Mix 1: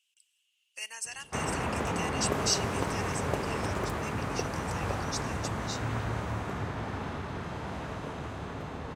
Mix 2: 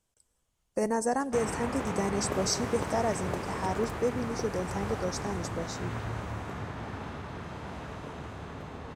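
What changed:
speech: remove resonant high-pass 2.8 kHz, resonance Q 11; background: send off

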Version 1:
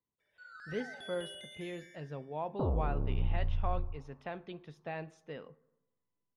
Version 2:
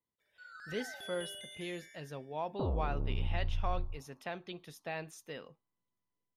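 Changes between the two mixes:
speech: remove tape spacing loss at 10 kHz 26 dB; first sound: add treble shelf 6.4 kHz +8 dB; reverb: off

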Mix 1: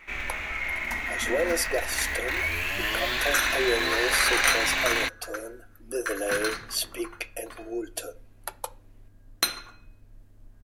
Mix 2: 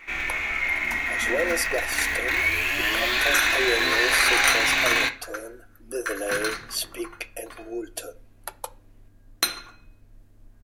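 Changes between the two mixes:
first sound: send on; second sound: send on

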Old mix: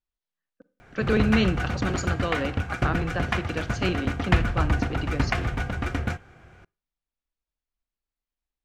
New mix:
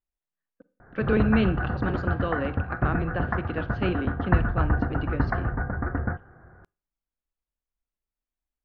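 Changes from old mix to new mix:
speech: add Gaussian low-pass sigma 2.9 samples; background: add steep low-pass 1.8 kHz 72 dB/octave

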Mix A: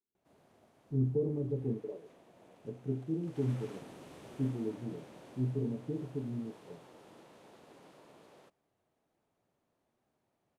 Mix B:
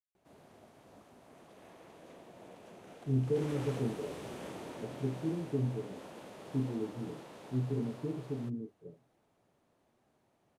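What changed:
speech: entry +2.15 s; background +7.0 dB

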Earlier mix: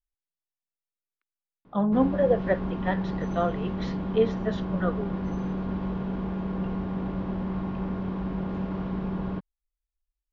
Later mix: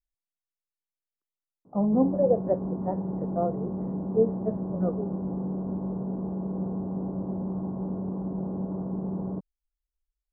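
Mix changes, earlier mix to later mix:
background: add high-pass 120 Hz 12 dB/octave; master: add inverse Chebyshev low-pass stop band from 4.7 kHz, stop band 80 dB

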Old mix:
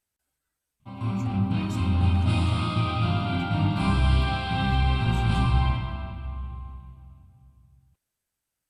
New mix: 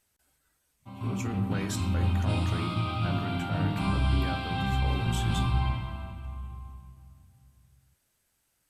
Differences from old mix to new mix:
speech +10.0 dB; background -4.5 dB

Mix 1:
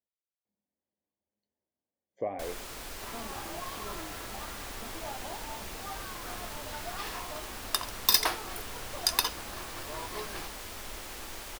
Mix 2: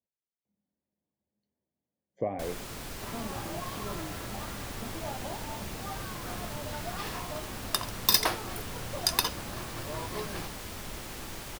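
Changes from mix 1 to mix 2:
second sound: add peaking EQ 560 Hz +5.5 dB 0.25 oct; master: add peaking EQ 140 Hz +11.5 dB 1.8 oct

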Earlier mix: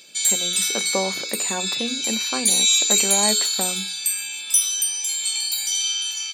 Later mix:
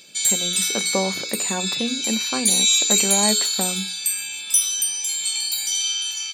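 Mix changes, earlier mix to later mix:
speech: add peaking EQ 150 Hz +4.5 dB 1.5 oct; master: remove high-pass 110 Hz 6 dB/octave

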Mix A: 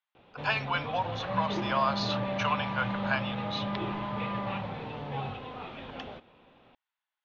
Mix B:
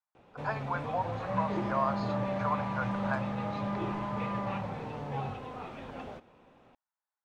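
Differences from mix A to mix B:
speech: add boxcar filter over 15 samples; master: remove resonant low-pass 3.5 kHz, resonance Q 2.6

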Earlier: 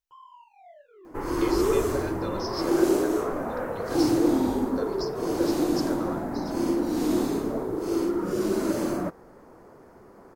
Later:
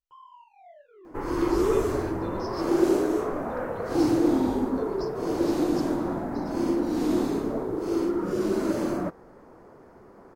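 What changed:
speech -5.5 dB; master: add treble shelf 6.1 kHz -8 dB

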